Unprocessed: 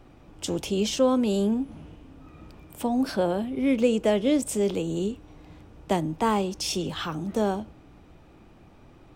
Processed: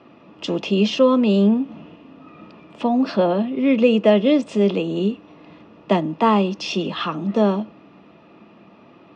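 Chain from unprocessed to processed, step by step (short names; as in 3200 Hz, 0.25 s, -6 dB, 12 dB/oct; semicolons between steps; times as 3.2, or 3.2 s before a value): speaker cabinet 200–4700 Hz, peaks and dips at 200 Hz +8 dB, 710 Hz +8 dB, 1200 Hz +4 dB, 2700 Hz +6 dB; notch comb 760 Hz; gain +5.5 dB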